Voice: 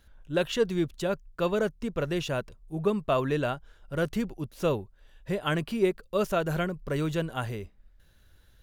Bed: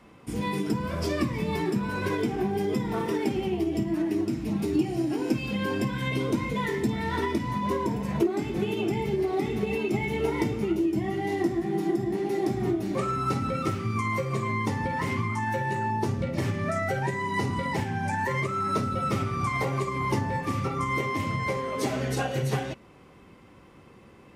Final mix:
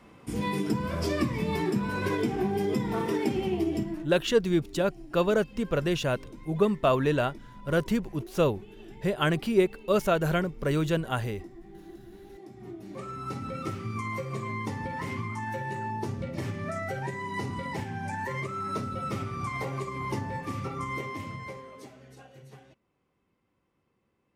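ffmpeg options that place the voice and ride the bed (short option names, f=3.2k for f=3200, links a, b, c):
-filter_complex "[0:a]adelay=3750,volume=2.5dB[a];[1:a]volume=14.5dB,afade=t=out:st=3.71:d=0.38:silence=0.1,afade=t=in:st=12.51:d=1.23:silence=0.177828,afade=t=out:st=20.85:d=1.09:silence=0.133352[b];[a][b]amix=inputs=2:normalize=0"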